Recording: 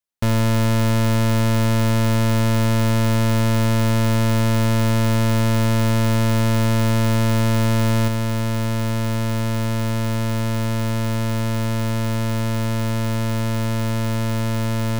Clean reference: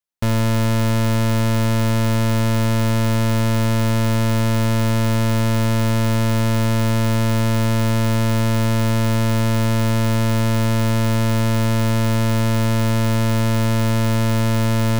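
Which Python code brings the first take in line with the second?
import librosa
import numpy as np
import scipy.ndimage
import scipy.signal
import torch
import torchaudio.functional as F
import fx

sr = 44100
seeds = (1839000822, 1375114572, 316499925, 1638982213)

y = fx.fix_level(x, sr, at_s=8.08, step_db=4.0)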